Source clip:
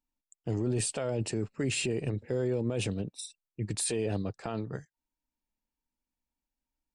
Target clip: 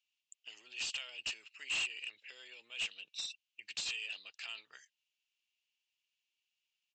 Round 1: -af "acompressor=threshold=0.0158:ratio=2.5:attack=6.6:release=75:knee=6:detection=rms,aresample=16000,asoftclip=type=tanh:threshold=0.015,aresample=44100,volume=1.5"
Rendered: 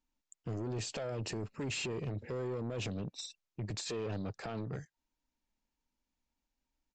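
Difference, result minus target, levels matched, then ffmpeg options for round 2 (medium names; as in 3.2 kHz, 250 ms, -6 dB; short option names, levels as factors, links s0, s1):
2 kHz band -6.5 dB
-af "acompressor=threshold=0.0158:ratio=2.5:attack=6.6:release=75:knee=6:detection=rms,highpass=f=2800:t=q:w=6.1,aresample=16000,asoftclip=type=tanh:threshold=0.015,aresample=44100,volume=1.5"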